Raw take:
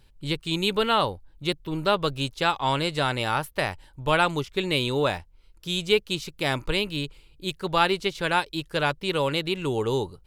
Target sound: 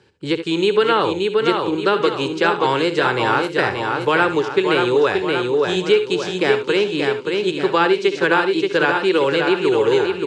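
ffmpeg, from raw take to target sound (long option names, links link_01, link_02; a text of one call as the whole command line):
ffmpeg -i in.wav -filter_complex "[0:a]equalizer=frequency=400:width=0.88:gain=12,asplit=2[link_01][link_02];[link_02]aecho=0:1:576|1152|1728|2304|2880:0.501|0.226|0.101|0.0457|0.0206[link_03];[link_01][link_03]amix=inputs=2:normalize=0,acrossover=split=430|1200[link_04][link_05][link_06];[link_04]acompressor=threshold=-25dB:ratio=4[link_07];[link_05]acompressor=threshold=-22dB:ratio=4[link_08];[link_06]acompressor=threshold=-25dB:ratio=4[link_09];[link_07][link_08][link_09]amix=inputs=3:normalize=0,highpass=frequency=100:width=0.5412,highpass=frequency=100:width=1.3066,equalizer=frequency=150:width_type=q:width=4:gain=-7,equalizer=frequency=250:width_type=q:width=4:gain=-8,equalizer=frequency=630:width_type=q:width=4:gain=-9,equalizer=frequency=1600:width_type=q:width=4:gain=6,equalizer=frequency=3700:width_type=q:width=4:gain=-5,lowpass=frequency=7300:width=0.5412,lowpass=frequency=7300:width=1.3066,asplit=2[link_10][link_11];[link_11]aecho=0:1:66|78:0.224|0.168[link_12];[link_10][link_12]amix=inputs=2:normalize=0,volume=5.5dB" out.wav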